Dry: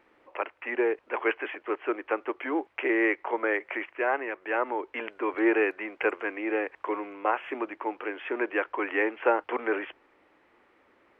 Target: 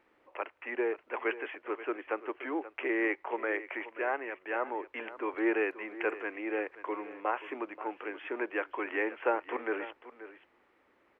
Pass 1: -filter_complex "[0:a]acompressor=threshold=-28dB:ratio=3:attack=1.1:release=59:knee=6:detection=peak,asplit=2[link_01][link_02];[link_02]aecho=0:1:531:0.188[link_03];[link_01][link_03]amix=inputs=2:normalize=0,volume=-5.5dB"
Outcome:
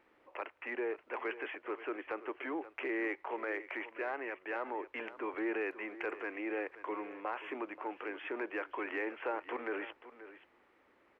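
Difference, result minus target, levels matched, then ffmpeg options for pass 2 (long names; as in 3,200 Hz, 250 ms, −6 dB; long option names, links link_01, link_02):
downward compressor: peak gain reduction +9.5 dB
-filter_complex "[0:a]asplit=2[link_01][link_02];[link_02]aecho=0:1:531:0.188[link_03];[link_01][link_03]amix=inputs=2:normalize=0,volume=-5.5dB"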